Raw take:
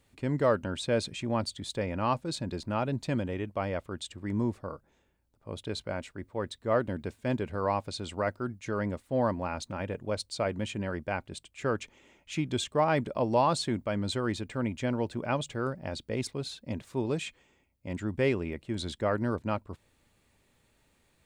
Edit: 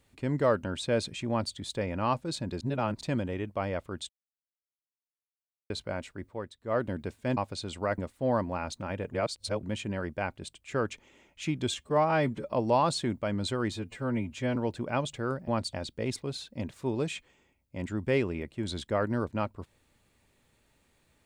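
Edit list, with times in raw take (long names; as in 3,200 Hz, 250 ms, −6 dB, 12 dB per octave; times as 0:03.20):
0:01.30–0:01.55: duplicate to 0:15.84
0:02.61–0:03.01: reverse
0:04.09–0:05.70: silence
0:06.26–0:06.84: duck −10 dB, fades 0.25 s
0:07.37–0:07.73: remove
0:08.34–0:08.88: remove
0:10.03–0:10.53: reverse
0:12.64–0:13.16: time-stretch 1.5×
0:14.36–0:14.92: time-stretch 1.5×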